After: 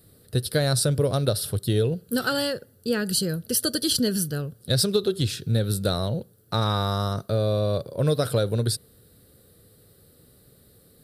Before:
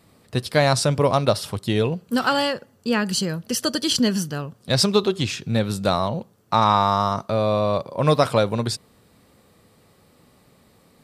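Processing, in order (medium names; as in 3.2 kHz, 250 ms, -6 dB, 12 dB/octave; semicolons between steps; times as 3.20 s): FFT filter 120 Hz 0 dB, 220 Hz -8 dB, 460 Hz -2 dB, 1 kHz -20 dB, 1.5 kHz -5 dB, 2.3 kHz -16 dB, 4 kHz -2 dB, 6.6 kHz -10 dB, 10 kHz +6 dB; compression, threshold -21 dBFS, peak gain reduction 5.5 dB; trim +3.5 dB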